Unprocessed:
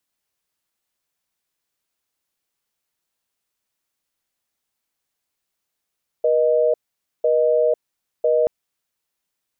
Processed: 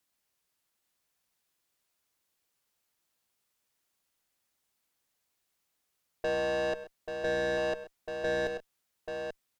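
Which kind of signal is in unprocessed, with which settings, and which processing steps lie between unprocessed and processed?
call progress tone busy tone, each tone -17 dBFS 2.23 s
tube stage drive 28 dB, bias 0.3; tapped delay 0.101/0.132/0.836 s -17/-17.5/-7 dB

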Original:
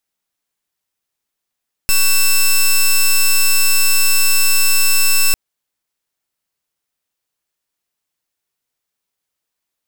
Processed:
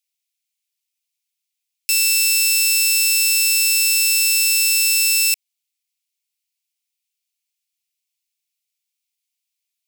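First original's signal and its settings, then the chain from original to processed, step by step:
pulse 2660 Hz, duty 9% -11 dBFS 3.45 s
Chebyshev high-pass 2300 Hz, order 4

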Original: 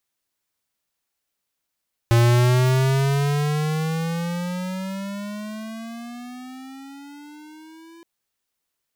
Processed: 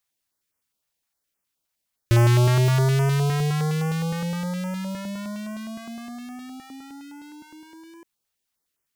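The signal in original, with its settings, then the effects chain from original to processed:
gliding synth tone square, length 5.92 s, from 116 Hz, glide +18.5 st, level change -31 dB, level -14.5 dB
stepped notch 9.7 Hz 280–3900 Hz

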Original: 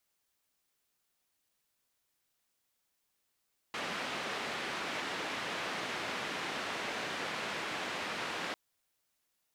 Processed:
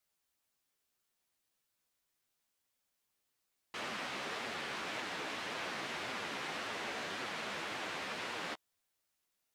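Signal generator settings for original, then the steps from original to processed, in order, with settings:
noise band 180–2500 Hz, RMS -38 dBFS 4.80 s
flange 1.8 Hz, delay 7.5 ms, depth 8.1 ms, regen -3%

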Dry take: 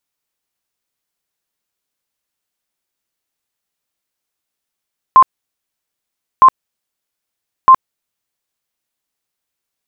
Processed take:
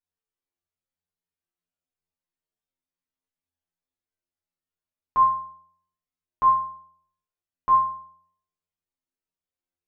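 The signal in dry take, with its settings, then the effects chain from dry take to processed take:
tone bursts 1050 Hz, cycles 69, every 1.26 s, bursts 3, -1.5 dBFS
tilt -2.5 dB/oct; compressor, threshold -7 dBFS; metallic resonator 86 Hz, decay 0.75 s, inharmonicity 0.002

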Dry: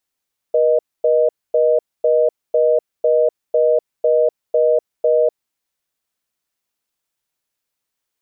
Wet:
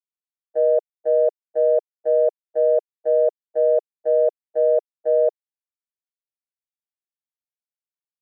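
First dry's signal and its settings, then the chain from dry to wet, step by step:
call progress tone reorder tone, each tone -14 dBFS 5.00 s
steep high-pass 400 Hz 36 dB/oct; tilt shelf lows -4 dB, about 660 Hz; gate -15 dBFS, range -35 dB

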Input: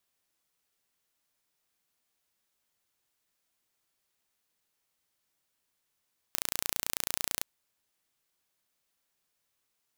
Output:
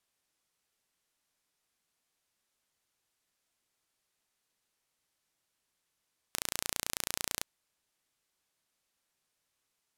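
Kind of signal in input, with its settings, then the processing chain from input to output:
pulse train 29.1/s, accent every 0, -3 dBFS 1.09 s
LPF 12000 Hz 12 dB/oct

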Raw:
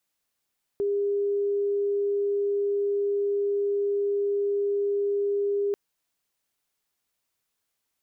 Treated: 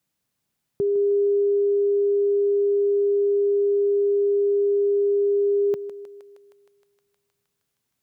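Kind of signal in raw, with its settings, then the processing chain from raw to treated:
tone sine 404 Hz -22.5 dBFS 4.94 s
bell 140 Hz +14.5 dB 2 oct; thinning echo 0.156 s, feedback 81%, high-pass 440 Hz, level -11 dB

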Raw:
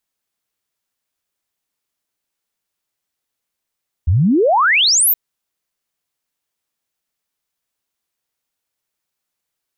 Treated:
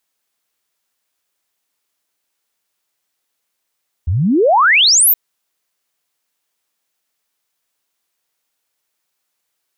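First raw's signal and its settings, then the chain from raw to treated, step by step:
log sweep 74 Hz -> 16000 Hz 1.07 s -10 dBFS
low shelf 200 Hz -10.5 dB; in parallel at +1 dB: limiter -19.5 dBFS

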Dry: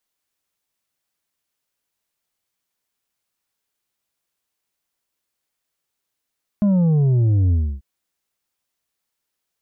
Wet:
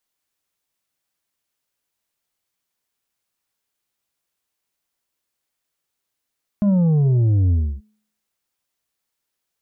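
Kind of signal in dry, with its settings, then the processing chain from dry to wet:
sub drop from 210 Hz, over 1.19 s, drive 5.5 dB, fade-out 0.29 s, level -14 dB
de-hum 213.4 Hz, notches 29

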